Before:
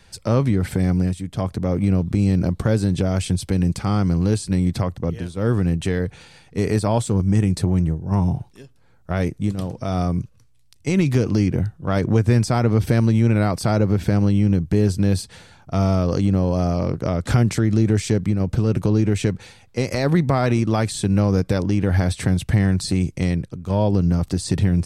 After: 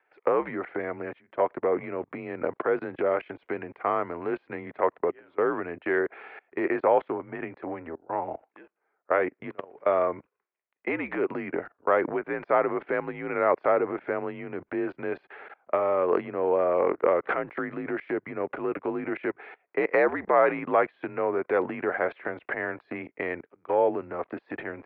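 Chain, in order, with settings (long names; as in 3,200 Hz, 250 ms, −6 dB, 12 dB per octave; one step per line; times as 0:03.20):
output level in coarse steps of 24 dB
single-sideband voice off tune −71 Hz 480–2,300 Hz
level +8.5 dB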